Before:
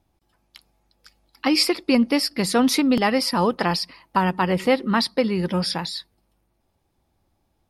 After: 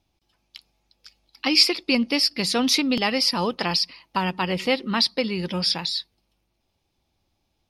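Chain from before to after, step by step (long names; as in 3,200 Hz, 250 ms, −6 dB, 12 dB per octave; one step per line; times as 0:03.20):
flat-topped bell 3,800 Hz +9 dB
level −4.5 dB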